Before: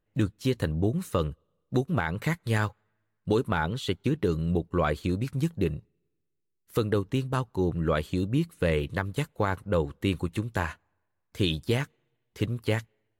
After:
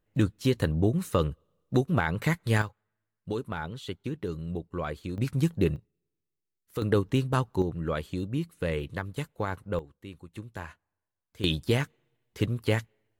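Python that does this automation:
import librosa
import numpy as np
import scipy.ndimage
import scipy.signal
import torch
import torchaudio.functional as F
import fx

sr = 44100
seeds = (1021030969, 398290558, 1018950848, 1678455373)

y = fx.gain(x, sr, db=fx.steps((0.0, 1.5), (2.62, -7.5), (5.18, 2.0), (5.76, -6.5), (6.82, 2.0), (7.62, -4.5), (9.79, -17.0), (10.34, -10.5), (11.44, 1.0)))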